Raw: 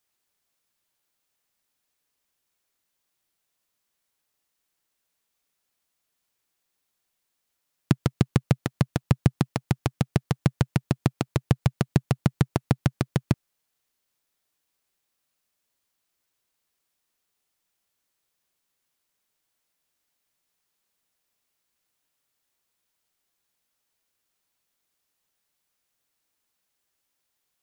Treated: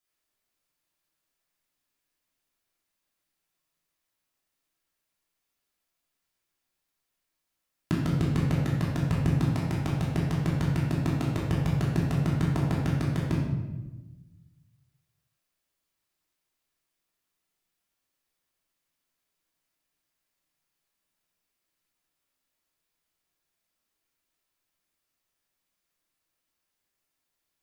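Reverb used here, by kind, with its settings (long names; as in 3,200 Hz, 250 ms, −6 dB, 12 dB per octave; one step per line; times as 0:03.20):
rectangular room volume 560 cubic metres, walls mixed, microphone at 3 metres
level −9.5 dB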